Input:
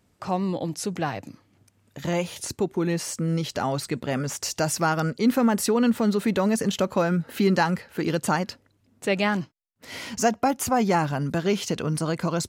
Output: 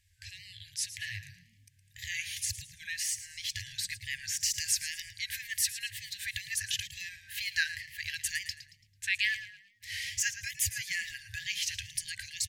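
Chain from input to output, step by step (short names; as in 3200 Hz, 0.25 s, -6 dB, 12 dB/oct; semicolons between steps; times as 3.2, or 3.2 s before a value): FFT band-reject 110–1600 Hz; frequency-shifting echo 0.111 s, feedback 37%, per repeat +38 Hz, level -13 dB; wow and flutter 72 cents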